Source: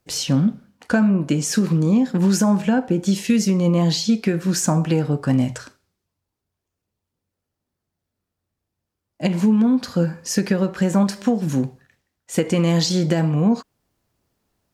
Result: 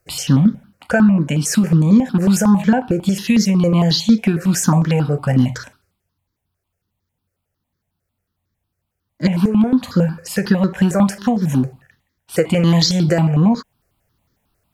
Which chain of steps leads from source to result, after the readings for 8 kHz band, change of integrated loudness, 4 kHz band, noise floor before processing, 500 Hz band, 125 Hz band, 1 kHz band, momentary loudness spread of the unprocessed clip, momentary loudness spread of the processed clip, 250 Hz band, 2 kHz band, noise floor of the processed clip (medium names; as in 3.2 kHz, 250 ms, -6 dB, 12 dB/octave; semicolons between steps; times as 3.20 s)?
+1.5 dB, +3.5 dB, +4.0 dB, -82 dBFS, +2.5 dB, +4.5 dB, +4.5 dB, 6 LU, 7 LU, +3.5 dB, +4.5 dB, -77 dBFS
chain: stepped phaser 11 Hz 920–2700 Hz; trim +7 dB